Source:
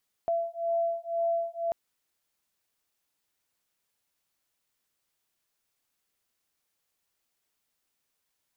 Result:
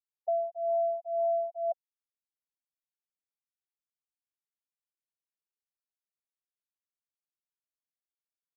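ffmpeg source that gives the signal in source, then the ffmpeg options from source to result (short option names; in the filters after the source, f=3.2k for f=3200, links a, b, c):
-f lavfi -i "aevalsrc='0.0335*(sin(2*PI*673*t)+sin(2*PI*675*t))':d=1.44:s=44100"
-af "afftfilt=real='re*gte(hypot(re,im),0.0891)':imag='im*gte(hypot(re,im),0.0891)':win_size=1024:overlap=0.75"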